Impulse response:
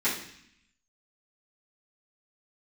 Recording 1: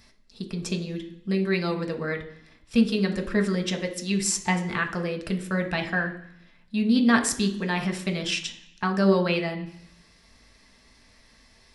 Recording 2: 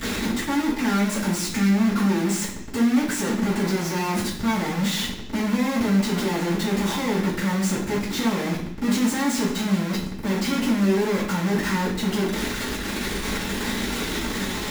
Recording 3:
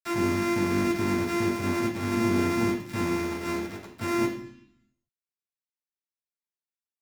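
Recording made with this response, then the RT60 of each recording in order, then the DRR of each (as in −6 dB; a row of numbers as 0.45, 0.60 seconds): 2; 0.65, 0.65, 0.65 seconds; 3.0, −12.5, −5.5 decibels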